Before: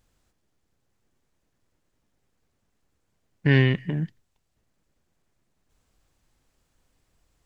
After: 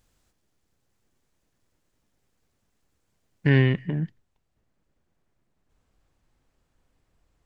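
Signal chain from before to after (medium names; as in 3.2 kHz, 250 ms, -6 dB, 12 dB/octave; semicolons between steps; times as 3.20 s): treble shelf 3.3 kHz +3 dB, from 3.49 s -8.5 dB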